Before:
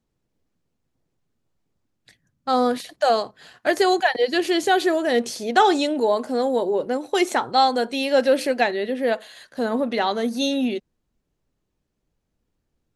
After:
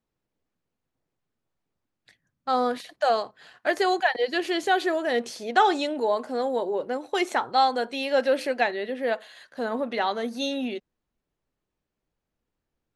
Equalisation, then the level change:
low-shelf EQ 490 Hz −9.5 dB
high-shelf EQ 4,000 Hz −10.5 dB
0.0 dB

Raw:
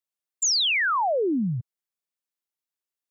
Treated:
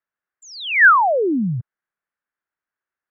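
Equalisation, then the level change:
low-pass with resonance 1,600 Hz, resonance Q 3.6
+4.5 dB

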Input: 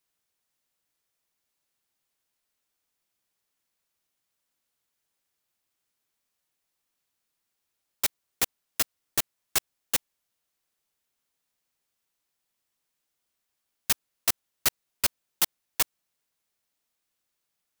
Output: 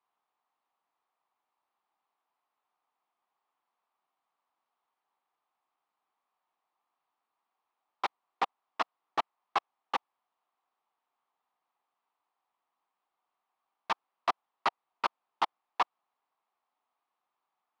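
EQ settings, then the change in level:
band-pass filter 300–7,100 Hz
high-frequency loss of the air 350 metres
flat-topped bell 940 Hz +12.5 dB 1 octave
0.0 dB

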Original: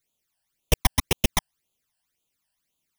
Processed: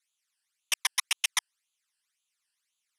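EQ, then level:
high-pass filter 1,200 Hz 24 dB per octave
low-pass filter 11,000 Hz 24 dB per octave
0.0 dB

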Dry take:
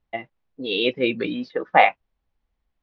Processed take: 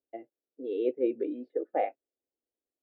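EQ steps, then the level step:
four-pole ladder band-pass 400 Hz, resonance 25%
phaser with its sweep stopped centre 430 Hz, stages 4
+6.0 dB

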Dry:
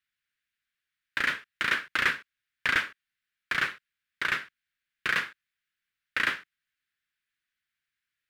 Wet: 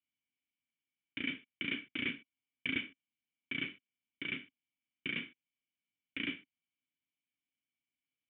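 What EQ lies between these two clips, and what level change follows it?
formant resonators in series i
high-pass filter 80 Hz
+7.5 dB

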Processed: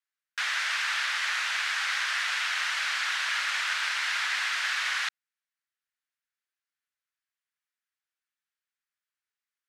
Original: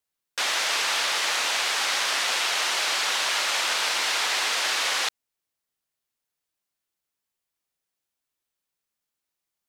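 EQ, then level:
resonant band-pass 1,600 Hz, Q 2.2
spectral tilt +4 dB per octave
−1.5 dB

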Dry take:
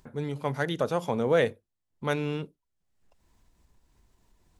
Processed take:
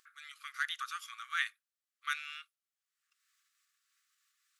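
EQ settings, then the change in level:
linear-phase brick-wall high-pass 1,100 Hz
−1.0 dB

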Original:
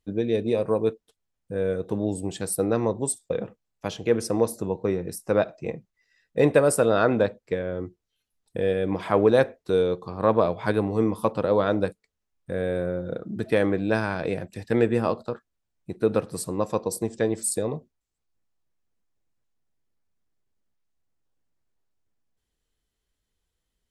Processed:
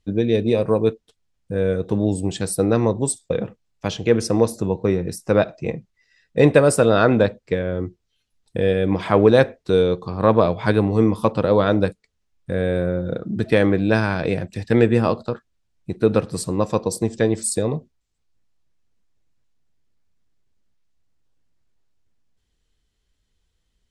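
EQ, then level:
high-frequency loss of the air 63 metres
low-shelf EQ 250 Hz +8 dB
high-shelf EQ 2,100 Hz +8.5 dB
+2.5 dB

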